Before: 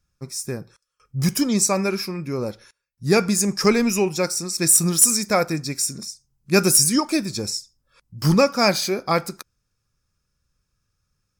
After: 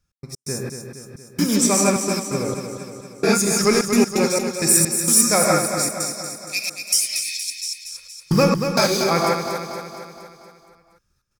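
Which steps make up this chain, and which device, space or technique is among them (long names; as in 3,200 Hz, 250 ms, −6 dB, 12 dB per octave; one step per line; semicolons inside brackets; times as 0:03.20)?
0:05.78–0:07.58: Butterworth high-pass 2,100 Hz 72 dB per octave
reverb whose tail is shaped and stops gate 190 ms rising, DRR −1.5 dB
trance gate with a delay (gate pattern "x.x.xx..xx..xxxx" 130 BPM −60 dB; repeating echo 234 ms, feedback 57%, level −7.5 dB)
level −1 dB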